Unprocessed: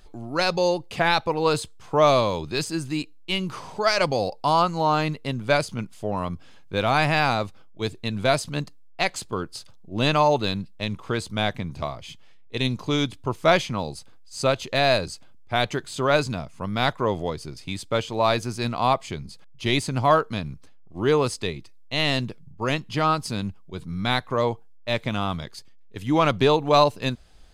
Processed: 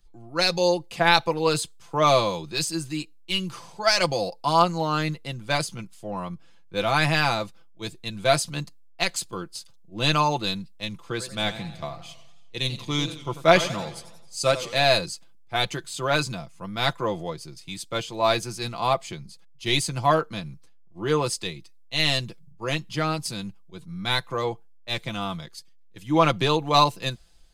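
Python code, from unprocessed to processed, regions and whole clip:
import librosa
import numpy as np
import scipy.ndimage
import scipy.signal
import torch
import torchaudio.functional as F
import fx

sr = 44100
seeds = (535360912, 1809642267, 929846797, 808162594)

y = fx.chain(x, sr, fx.echo_single(ms=328, db=-24.0),
    fx.echo_warbled(ms=91, feedback_pct=61, rate_hz=2.8, cents=166, wet_db=-12.5), at=(11.08, 14.84))
y = fx.high_shelf(y, sr, hz=3500.0, db=8.0)
y = y + 0.58 * np.pad(y, (int(5.9 * sr / 1000.0), 0))[:len(y)]
y = fx.band_widen(y, sr, depth_pct=40)
y = F.gain(torch.from_numpy(y), -4.0).numpy()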